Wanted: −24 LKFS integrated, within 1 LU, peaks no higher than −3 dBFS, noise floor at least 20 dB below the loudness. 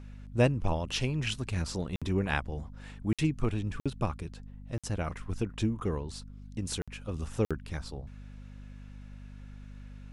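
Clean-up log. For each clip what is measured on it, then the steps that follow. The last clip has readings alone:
number of dropouts 6; longest dropout 56 ms; mains hum 50 Hz; hum harmonics up to 250 Hz; level of the hum −45 dBFS; integrated loudness −33.0 LKFS; sample peak −12.5 dBFS; target loudness −24.0 LKFS
→ repair the gap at 0:01.96/0:03.13/0:03.80/0:04.78/0:06.82/0:07.45, 56 ms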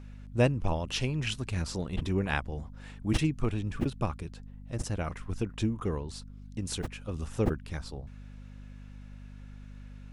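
number of dropouts 0; mains hum 50 Hz; hum harmonics up to 250 Hz; level of the hum −45 dBFS
→ hum removal 50 Hz, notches 5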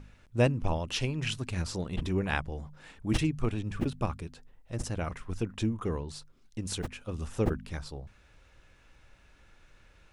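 mains hum none found; integrated loudness −33.0 LKFS; sample peak −12.5 dBFS; target loudness −24.0 LKFS
→ level +9 dB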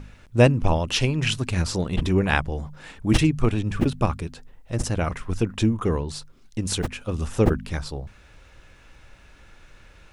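integrated loudness −24.0 LKFS; sample peak −3.5 dBFS; background noise floor −52 dBFS

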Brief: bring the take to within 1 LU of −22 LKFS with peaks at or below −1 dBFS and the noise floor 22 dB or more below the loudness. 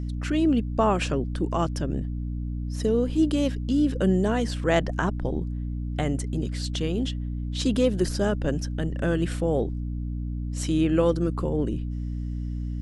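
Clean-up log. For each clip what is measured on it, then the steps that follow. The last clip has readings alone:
mains hum 60 Hz; hum harmonics up to 300 Hz; level of the hum −28 dBFS; integrated loudness −26.5 LKFS; sample peak −7.0 dBFS; target loudness −22.0 LKFS
→ mains-hum notches 60/120/180/240/300 Hz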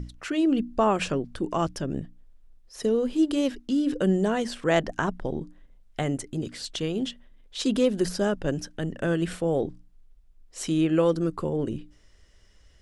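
mains hum none found; integrated loudness −27.0 LKFS; sample peak −8.0 dBFS; target loudness −22.0 LKFS
→ level +5 dB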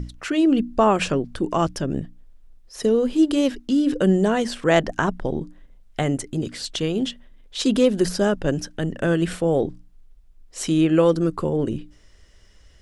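integrated loudness −22.0 LKFS; sample peak −3.0 dBFS; background noise floor −52 dBFS

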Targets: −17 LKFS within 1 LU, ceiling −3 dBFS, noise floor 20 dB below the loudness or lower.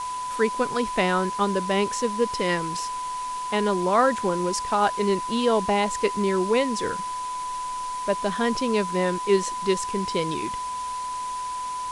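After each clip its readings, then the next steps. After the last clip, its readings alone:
interfering tone 1,000 Hz; level of the tone −28 dBFS; background noise floor −31 dBFS; target noise floor −45 dBFS; integrated loudness −25.0 LKFS; sample peak −7.5 dBFS; target loudness −17.0 LKFS
→ notch filter 1,000 Hz, Q 30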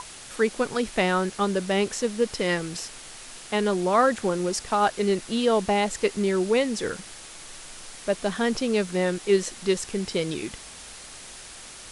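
interfering tone none found; background noise floor −43 dBFS; target noise floor −45 dBFS
→ broadband denoise 6 dB, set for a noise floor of −43 dBFS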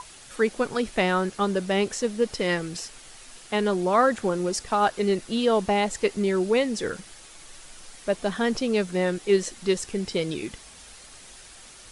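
background noise floor −47 dBFS; integrated loudness −25.5 LKFS; sample peak −9.0 dBFS; target loudness −17.0 LKFS
→ level +8.5 dB
brickwall limiter −3 dBFS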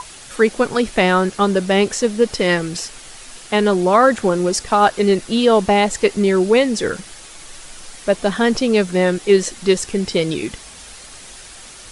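integrated loudness −17.0 LKFS; sample peak −3.0 dBFS; background noise floor −39 dBFS

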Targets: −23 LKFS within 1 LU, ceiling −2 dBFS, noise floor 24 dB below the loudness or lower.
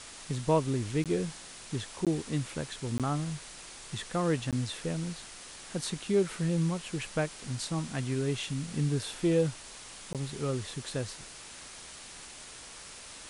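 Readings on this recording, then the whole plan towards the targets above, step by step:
number of dropouts 5; longest dropout 17 ms; background noise floor −47 dBFS; target noise floor −57 dBFS; integrated loudness −32.5 LKFS; sample peak −14.0 dBFS; target loudness −23.0 LKFS
→ repair the gap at 0:01.04/0:02.05/0:02.98/0:04.51/0:10.13, 17 ms
noise reduction from a noise print 10 dB
level +9.5 dB

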